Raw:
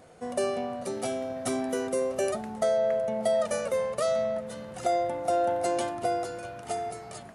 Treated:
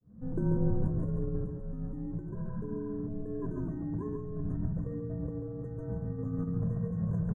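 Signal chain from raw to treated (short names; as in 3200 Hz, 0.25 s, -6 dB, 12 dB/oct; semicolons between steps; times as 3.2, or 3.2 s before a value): opening faded in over 1.59 s; FFT band-reject 2100–6400 Hz; RIAA curve playback; spectral repair 2.36–2.9, 1200–5200 Hz before; tilt -4 dB/oct; comb 2.3 ms, depth 30%; negative-ratio compressor -31 dBFS, ratio -1; frequency shift -230 Hz; flange 0.37 Hz, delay 9.9 ms, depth 1.9 ms, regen -74%; echo 0.14 s -5 dB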